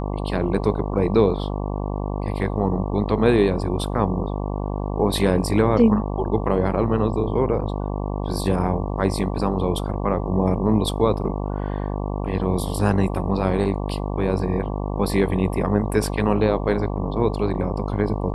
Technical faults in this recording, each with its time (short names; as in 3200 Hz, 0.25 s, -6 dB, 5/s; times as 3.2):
buzz 50 Hz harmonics 23 -26 dBFS